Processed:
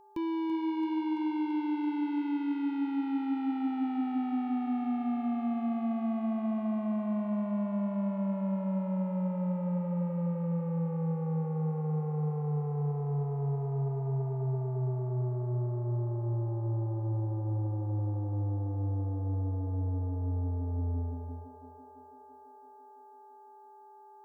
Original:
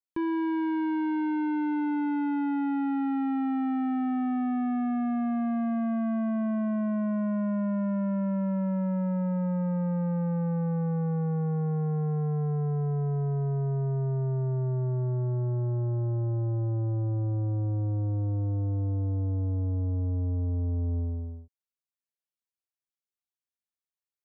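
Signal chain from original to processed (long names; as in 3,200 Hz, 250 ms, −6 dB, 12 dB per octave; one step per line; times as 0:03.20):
hum with harmonics 400 Hz, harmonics 4, −60 dBFS −8 dB per octave
high-shelf EQ 2,600 Hz +11.5 dB
notch filter 850 Hz, Q 12
steady tone 860 Hz −51 dBFS
parametric band 1,600 Hz −14.5 dB 0.47 octaves
feedback echo with a high-pass in the loop 335 ms, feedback 78%, high-pass 250 Hz, level −7.5 dB
level −4 dB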